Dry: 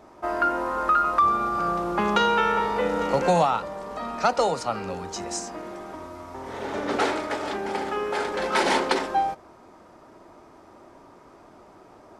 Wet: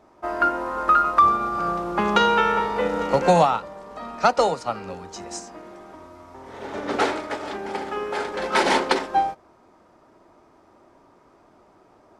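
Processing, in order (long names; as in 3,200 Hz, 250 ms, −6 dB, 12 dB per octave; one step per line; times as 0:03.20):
high-shelf EQ 10,000 Hz −4.5 dB
expander for the loud parts 1.5 to 1, over −36 dBFS
level +5 dB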